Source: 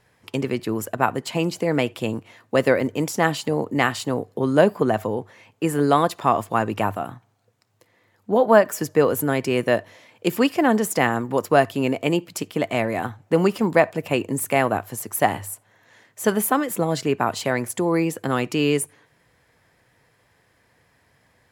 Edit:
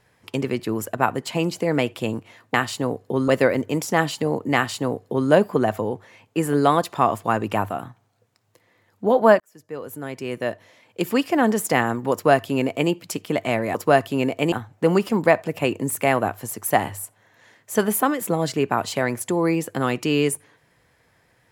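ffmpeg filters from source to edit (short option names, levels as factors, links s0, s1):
-filter_complex "[0:a]asplit=6[s0][s1][s2][s3][s4][s5];[s0]atrim=end=2.542[s6];[s1]atrim=start=3.808:end=4.552[s7];[s2]atrim=start=2.538:end=8.66,asetpts=PTS-STARTPTS,afade=t=out:st=6.118:d=0.004:c=hsin[s8];[s3]atrim=start=8.66:end=13.012,asetpts=PTS-STARTPTS,afade=t=in:d=2.14[s9];[s4]atrim=start=11.388:end=12.162[s10];[s5]atrim=start=13.008[s11];[s6][s7]acrossfade=d=0.004:c1=hsin:c2=hsin[s12];[s8][s9]concat=n=2:v=0:a=1[s13];[s12][s13]acrossfade=d=0.004:c1=hsin:c2=hsin[s14];[s14][s10]acrossfade=d=0.004:c1=hsin:c2=hsin[s15];[s15][s11]acrossfade=d=0.004:c1=hsin:c2=hsin"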